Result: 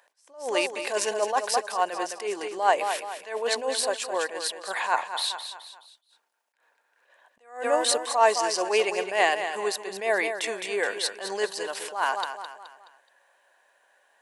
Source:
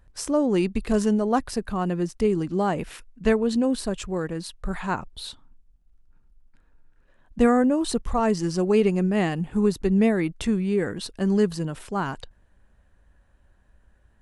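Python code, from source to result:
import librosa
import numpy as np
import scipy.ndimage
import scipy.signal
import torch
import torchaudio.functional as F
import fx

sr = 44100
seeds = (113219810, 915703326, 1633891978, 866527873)

y = scipy.signal.sosfilt(scipy.signal.butter(4, 590.0, 'highpass', fs=sr, output='sos'), x)
y = fx.notch(y, sr, hz=1300.0, q=5.7)
y = fx.echo_feedback(y, sr, ms=212, feedback_pct=41, wet_db=-9.5)
y = fx.attack_slew(y, sr, db_per_s=140.0)
y = y * 10.0 ** (8.5 / 20.0)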